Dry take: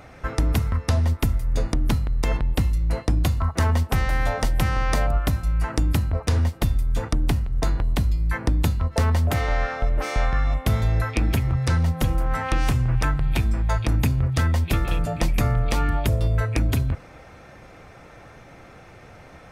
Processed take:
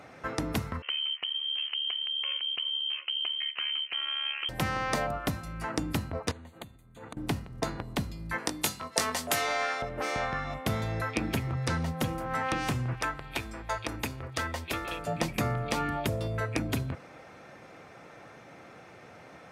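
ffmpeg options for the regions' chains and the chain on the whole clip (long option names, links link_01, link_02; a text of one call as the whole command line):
ffmpeg -i in.wav -filter_complex "[0:a]asettb=1/sr,asplit=3[link_01][link_02][link_03];[link_01]atrim=end=0.824[link_04];[link_02]atrim=start=0.82:end=4.49,asetpts=PTS-STARTPTS,afade=type=in:duration=0.004:curve=qsin,afade=type=out:start_time=3.666:duration=0.004:curve=qsin,lowpass=frequency=2700:width_type=q:width=0.5098,lowpass=frequency=2700:width_type=q:width=0.6013,lowpass=frequency=2700:width_type=q:width=0.9,lowpass=frequency=2700:width_type=q:width=2.563,afreqshift=-3200,acompressor=threshold=-25dB:ratio=3:attack=3.2:release=140:knee=1:detection=peak,tremolo=f=72:d=0.71[link_05];[link_03]atrim=start=4.486[link_06];[link_04][link_05]acrossfade=duration=0.004:curve1=hsin:curve2=qsin[link_07];[link_07][link_06]acrossfade=duration=0.004:curve1=qsin:curve2=hsin,asettb=1/sr,asplit=3[link_08][link_09][link_10];[link_08]atrim=end=6.314[link_11];[link_09]atrim=start=6.31:end=7.17,asetpts=PTS-STARTPTS,afade=type=in:duration=0.004:curve=qsin,afade=type=out:start_time=0.856:duration=0.004:curve=qsin,acompressor=threshold=-33dB:ratio=12:attack=3.2:release=140:knee=1:detection=peak,asuperstop=centerf=5300:order=8:qfactor=3.2[link_12];[link_10]atrim=start=7.166[link_13];[link_11][link_12]acrossfade=duration=0.004:curve1=hsin:curve2=qsin[link_14];[link_14][link_13]acrossfade=duration=0.004:curve1=qsin:curve2=hsin,asettb=1/sr,asplit=3[link_15][link_16][link_17];[link_15]atrim=end=8.384[link_18];[link_16]atrim=start=8.38:end=9.82,asetpts=PTS-STARTPTS,afade=type=in:duration=0.004:curve=qsin,afade=type=out:start_time=1.436:duration=0.004:curve=qsin,lowpass=9500,aemphasis=mode=production:type=riaa,asplit=2[link_19][link_20];[link_20]adelay=20,volume=-7dB[link_21];[link_19][link_21]amix=inputs=2:normalize=0,atrim=end_sample=63504[link_22];[link_17]atrim=start=9.816[link_23];[link_18][link_22]acrossfade=duration=0.004:curve1=hsin:curve2=qsin[link_24];[link_24][link_23]acrossfade=duration=0.004:curve1=qsin:curve2=hsin,asettb=1/sr,asplit=3[link_25][link_26][link_27];[link_25]atrim=end=12.934[link_28];[link_26]atrim=start=12.93:end=15.07,asetpts=PTS-STARTPTS,afade=type=in:duration=0.004:curve=qsin,afade=type=out:start_time=2.136:duration=0.004:curve=qsin,equalizer=frequency=160:width_type=o:width=1.4:gain=-14,bandreject=frequency=750:width=17[link_29];[link_27]atrim=start=15.066[link_30];[link_28][link_29]acrossfade=duration=0.004:curve1=hsin:curve2=qsin[link_31];[link_31][link_30]acrossfade=duration=0.004:curve1=qsin:curve2=hsin,highpass=160,highshelf=frequency=12000:gain=-6,volume=-3dB" out.wav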